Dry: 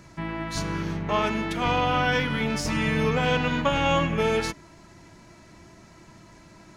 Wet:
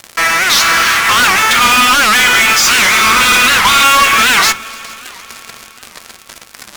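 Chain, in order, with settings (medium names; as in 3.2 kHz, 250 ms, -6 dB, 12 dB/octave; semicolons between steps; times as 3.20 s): 2.60–3.83 s: comb filter that takes the minimum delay 0.84 ms; elliptic band-pass 1.2–7.5 kHz; in parallel at +1.5 dB: compression, threshold -38 dBFS, peak gain reduction 13.5 dB; on the sum: fuzz box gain 44 dB, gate -44 dBFS; multi-head delay 143 ms, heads second and third, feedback 63%, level -23.5 dB; on a send at -9 dB: reverberation RT60 0.35 s, pre-delay 4 ms; on the sum: warped record 78 rpm, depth 250 cents; trim +5.5 dB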